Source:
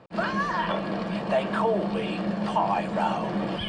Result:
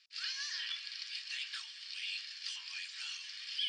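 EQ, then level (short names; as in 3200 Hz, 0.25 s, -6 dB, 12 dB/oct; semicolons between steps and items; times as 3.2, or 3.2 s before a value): inverse Chebyshev high-pass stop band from 730 Hz, stop band 50 dB; synth low-pass 5200 Hz, resonance Q 3.1; differentiator; +3.5 dB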